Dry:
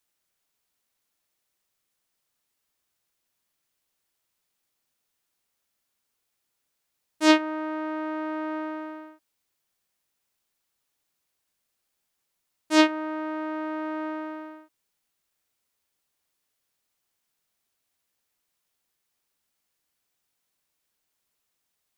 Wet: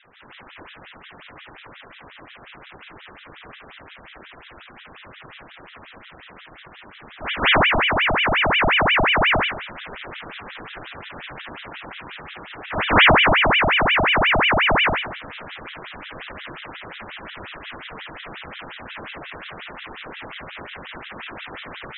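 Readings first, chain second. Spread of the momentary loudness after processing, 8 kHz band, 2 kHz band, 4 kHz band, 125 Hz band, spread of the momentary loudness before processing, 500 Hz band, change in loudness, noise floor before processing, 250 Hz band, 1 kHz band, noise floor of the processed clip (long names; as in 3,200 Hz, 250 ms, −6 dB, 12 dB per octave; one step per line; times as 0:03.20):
20 LU, below −35 dB, +17.5 dB, +15.5 dB, can't be measured, 17 LU, +8.5 dB, +10.0 dB, −79 dBFS, −0.5 dB, +13.0 dB, −46 dBFS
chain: converter with a step at zero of −19.5 dBFS
low-pass filter 1,100 Hz 24 dB per octave
dynamic equaliser 670 Hz, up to +5 dB, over −38 dBFS, Q 0.8
speech leveller 2 s
gate on every frequency bin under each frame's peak −10 dB strong
on a send: feedback echo with a high-pass in the loop 457 ms, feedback 41%, high-pass 490 Hz, level −13.5 dB
on the sum: comb and all-pass reverb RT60 1.6 s, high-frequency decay 0.9×, pre-delay 110 ms, DRR −10 dB
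ring modulator whose carrier an LFO sweeps 1,500 Hz, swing 80%, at 5.6 Hz
level −8.5 dB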